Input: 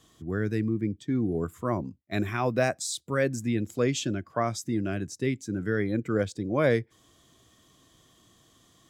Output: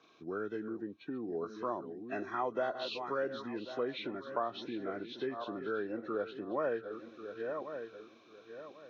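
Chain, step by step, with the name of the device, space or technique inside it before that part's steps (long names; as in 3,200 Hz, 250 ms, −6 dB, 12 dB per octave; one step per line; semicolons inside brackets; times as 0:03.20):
feedback delay that plays each chunk backwards 545 ms, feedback 50%, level −12 dB
dynamic equaliser 890 Hz, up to +4 dB, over −43 dBFS, Q 1.5
hearing aid with frequency lowering (hearing-aid frequency compression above 1,200 Hz 1.5 to 1; downward compressor 2.5 to 1, threshold −34 dBFS, peak gain reduction 11.5 dB; loudspeaker in its box 360–6,200 Hz, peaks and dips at 400 Hz +3 dB, 1,300 Hz +3 dB, 2,000 Hz −6 dB, 2,900 Hz −3 dB, 4,700 Hz −10 dB)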